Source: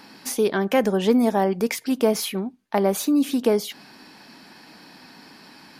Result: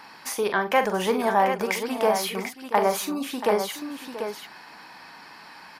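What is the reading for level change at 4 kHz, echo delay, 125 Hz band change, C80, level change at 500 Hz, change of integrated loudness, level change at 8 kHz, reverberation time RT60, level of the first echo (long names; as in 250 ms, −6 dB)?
−0.5 dB, 43 ms, can't be measured, no reverb audible, −2.5 dB, −3.0 dB, −2.0 dB, no reverb audible, −9.0 dB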